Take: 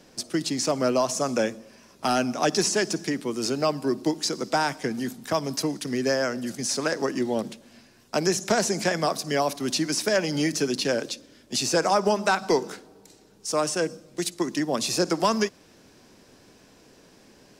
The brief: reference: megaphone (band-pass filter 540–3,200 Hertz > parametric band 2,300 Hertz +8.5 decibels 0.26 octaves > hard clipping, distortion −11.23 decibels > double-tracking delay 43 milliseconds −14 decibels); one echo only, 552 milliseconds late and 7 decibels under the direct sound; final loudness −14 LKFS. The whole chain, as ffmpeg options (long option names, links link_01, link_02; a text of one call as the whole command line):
ffmpeg -i in.wav -filter_complex "[0:a]highpass=540,lowpass=3200,equalizer=frequency=2300:width_type=o:width=0.26:gain=8.5,aecho=1:1:552:0.447,asoftclip=type=hard:threshold=-23dB,asplit=2[link_01][link_02];[link_02]adelay=43,volume=-14dB[link_03];[link_01][link_03]amix=inputs=2:normalize=0,volume=16.5dB" out.wav